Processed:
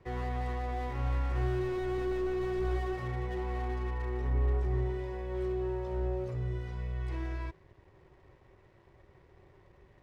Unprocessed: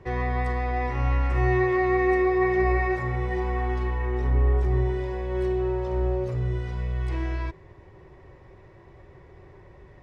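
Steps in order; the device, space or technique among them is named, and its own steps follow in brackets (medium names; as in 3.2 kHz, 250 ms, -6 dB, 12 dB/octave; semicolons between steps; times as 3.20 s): early transistor amplifier (crossover distortion -57 dBFS; slew-rate limiter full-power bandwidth 28 Hz); trim -7.5 dB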